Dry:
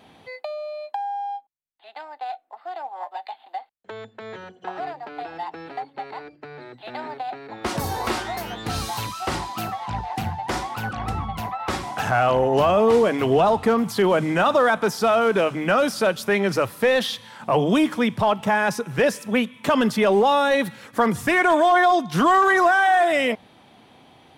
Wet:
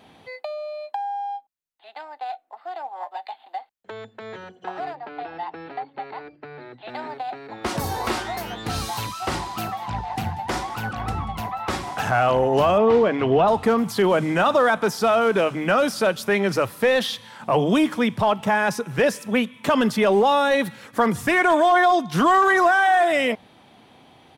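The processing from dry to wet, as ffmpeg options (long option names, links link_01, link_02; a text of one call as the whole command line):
ffmpeg -i in.wav -filter_complex "[0:a]asettb=1/sr,asplit=3[link_01][link_02][link_03];[link_01]atrim=end=4.954[link_04];[link_02]atrim=start=4.95:end=6.89,asetpts=PTS-STARTPTS,afade=type=in:duration=0.004:curve=qsin,afade=type=out:start_time=1.936:duration=0.004:curve=qsin,lowpass=3900[link_05];[link_03]atrim=start=6.886[link_06];[link_04][link_05]acrossfade=duration=0.004:curve1=hsin:curve2=qsin[link_07];[link_07][link_06]acrossfade=duration=0.004:curve1=qsin:curve2=hsin,asplit=3[link_08][link_09][link_10];[link_08]afade=type=out:start_time=9.21:duration=0.02[link_11];[link_09]aecho=1:1:188:0.119,afade=type=in:start_time=9.21:duration=0.02,afade=type=out:start_time=12:duration=0.02[link_12];[link_10]afade=type=in:start_time=12:duration=0.02[link_13];[link_11][link_12][link_13]amix=inputs=3:normalize=0,asettb=1/sr,asplit=3[link_14][link_15][link_16];[link_14]atrim=end=12.784[link_17];[link_15]atrim=start=12.78:end=13.48,asetpts=PTS-STARTPTS,afade=type=in:duration=0.004:curve=qsin,afade=type=out:start_time=0.696:duration=0.004:curve=qsin,lowpass=3400[link_18];[link_16]atrim=start=13.476[link_19];[link_17][link_18]acrossfade=duration=0.004:curve1=hsin:curve2=qsin[link_20];[link_20][link_19]acrossfade=duration=0.004:curve1=qsin:curve2=hsin" out.wav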